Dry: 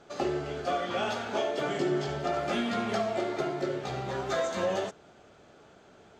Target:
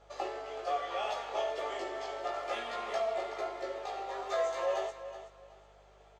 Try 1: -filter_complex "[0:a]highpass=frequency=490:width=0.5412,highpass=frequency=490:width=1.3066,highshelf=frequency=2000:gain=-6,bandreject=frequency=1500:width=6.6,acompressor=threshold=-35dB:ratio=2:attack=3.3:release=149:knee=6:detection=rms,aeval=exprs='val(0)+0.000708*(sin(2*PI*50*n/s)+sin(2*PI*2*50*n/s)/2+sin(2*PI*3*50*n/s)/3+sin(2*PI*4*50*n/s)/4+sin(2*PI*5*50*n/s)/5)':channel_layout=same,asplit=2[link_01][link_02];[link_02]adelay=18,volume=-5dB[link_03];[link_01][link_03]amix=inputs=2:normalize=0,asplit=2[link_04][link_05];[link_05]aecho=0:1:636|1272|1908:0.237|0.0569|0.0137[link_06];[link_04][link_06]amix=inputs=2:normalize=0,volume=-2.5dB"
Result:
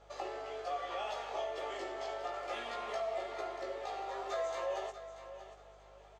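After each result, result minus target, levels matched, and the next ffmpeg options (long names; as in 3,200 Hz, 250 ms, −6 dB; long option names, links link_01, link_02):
echo 261 ms late; downward compressor: peak gain reduction +6 dB
-filter_complex "[0:a]highpass=frequency=490:width=0.5412,highpass=frequency=490:width=1.3066,highshelf=frequency=2000:gain=-6,bandreject=frequency=1500:width=6.6,acompressor=threshold=-35dB:ratio=2:attack=3.3:release=149:knee=6:detection=rms,aeval=exprs='val(0)+0.000708*(sin(2*PI*50*n/s)+sin(2*PI*2*50*n/s)/2+sin(2*PI*3*50*n/s)/3+sin(2*PI*4*50*n/s)/4+sin(2*PI*5*50*n/s)/5)':channel_layout=same,asplit=2[link_01][link_02];[link_02]adelay=18,volume=-5dB[link_03];[link_01][link_03]amix=inputs=2:normalize=0,asplit=2[link_04][link_05];[link_05]aecho=0:1:375|750|1125:0.237|0.0569|0.0137[link_06];[link_04][link_06]amix=inputs=2:normalize=0,volume=-2.5dB"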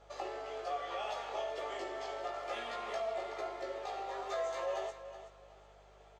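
downward compressor: peak gain reduction +6 dB
-filter_complex "[0:a]highpass=frequency=490:width=0.5412,highpass=frequency=490:width=1.3066,highshelf=frequency=2000:gain=-6,bandreject=frequency=1500:width=6.6,aeval=exprs='val(0)+0.000708*(sin(2*PI*50*n/s)+sin(2*PI*2*50*n/s)/2+sin(2*PI*3*50*n/s)/3+sin(2*PI*4*50*n/s)/4+sin(2*PI*5*50*n/s)/5)':channel_layout=same,asplit=2[link_01][link_02];[link_02]adelay=18,volume=-5dB[link_03];[link_01][link_03]amix=inputs=2:normalize=0,asplit=2[link_04][link_05];[link_05]aecho=0:1:375|750|1125:0.237|0.0569|0.0137[link_06];[link_04][link_06]amix=inputs=2:normalize=0,volume=-2.5dB"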